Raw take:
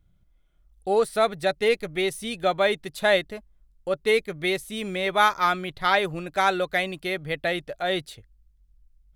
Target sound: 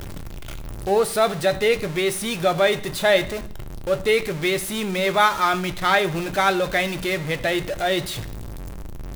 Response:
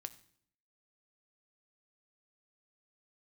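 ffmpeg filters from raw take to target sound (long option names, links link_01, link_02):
-filter_complex "[0:a]aeval=exprs='val(0)+0.5*0.0422*sgn(val(0))':channel_layout=same[link_01];[1:a]atrim=start_sample=2205[link_02];[link_01][link_02]afir=irnorm=-1:irlink=0,volume=5.5dB"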